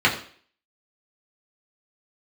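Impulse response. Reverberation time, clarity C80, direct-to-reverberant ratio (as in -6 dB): 0.50 s, 13.0 dB, -4.5 dB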